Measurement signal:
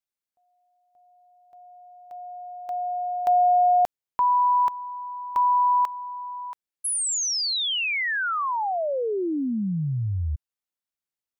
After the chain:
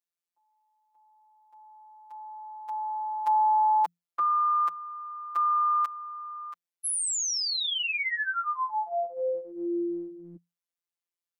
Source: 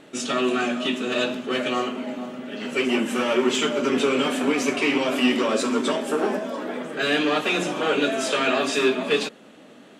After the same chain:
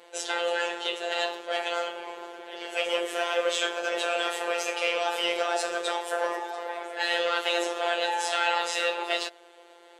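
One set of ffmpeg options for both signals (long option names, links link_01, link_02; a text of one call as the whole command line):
ffmpeg -i in.wav -af "lowshelf=frequency=160:gain=-4.5,afreqshift=180,afftfilt=real='hypot(re,im)*cos(PI*b)':imag='0':win_size=1024:overlap=0.75" out.wav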